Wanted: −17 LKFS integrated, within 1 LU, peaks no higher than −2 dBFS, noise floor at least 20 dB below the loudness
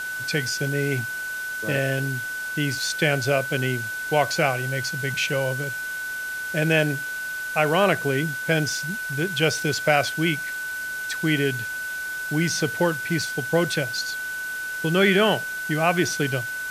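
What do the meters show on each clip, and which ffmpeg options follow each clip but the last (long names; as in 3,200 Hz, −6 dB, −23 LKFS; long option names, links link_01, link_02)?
interfering tone 1,500 Hz; level of the tone −28 dBFS; background noise floor −31 dBFS; target noise floor −44 dBFS; integrated loudness −24.0 LKFS; sample peak −4.5 dBFS; target loudness −17.0 LKFS
→ -af "bandreject=frequency=1500:width=30"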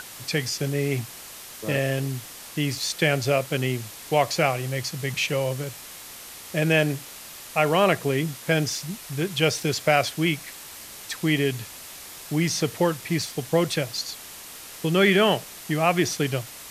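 interfering tone none found; background noise floor −42 dBFS; target noise floor −45 dBFS
→ -af "afftdn=noise_reduction=6:noise_floor=-42"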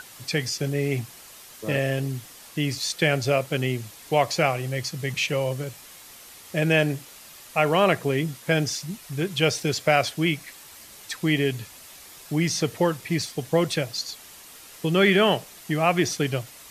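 background noise floor −46 dBFS; integrated loudness −24.5 LKFS; sample peak −5.5 dBFS; target loudness −17.0 LKFS
→ -af "volume=7.5dB,alimiter=limit=-2dB:level=0:latency=1"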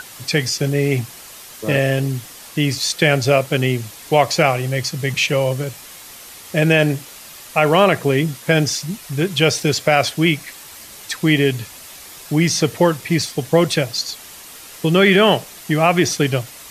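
integrated loudness −17.5 LKFS; sample peak −2.0 dBFS; background noise floor −39 dBFS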